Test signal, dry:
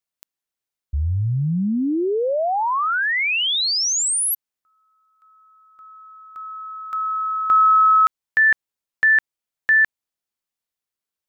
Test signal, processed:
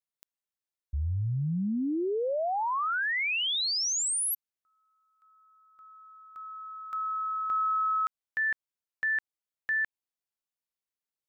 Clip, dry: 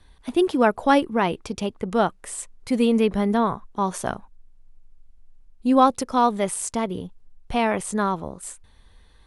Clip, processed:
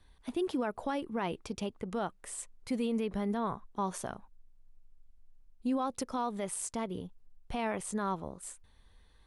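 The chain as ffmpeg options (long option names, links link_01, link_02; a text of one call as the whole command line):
ffmpeg -i in.wav -af "alimiter=limit=-16dB:level=0:latency=1:release=108,volume=-8.5dB" out.wav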